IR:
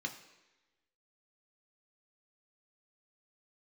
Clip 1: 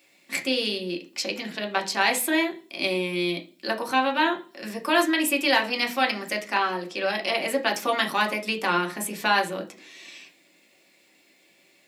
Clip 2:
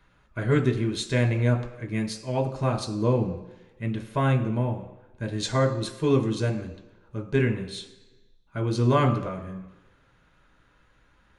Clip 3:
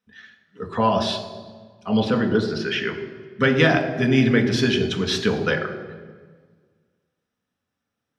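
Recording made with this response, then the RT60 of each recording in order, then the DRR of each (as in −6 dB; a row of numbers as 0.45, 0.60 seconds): 2; 0.40, 1.1, 1.6 seconds; 1.5, 3.0, 4.0 decibels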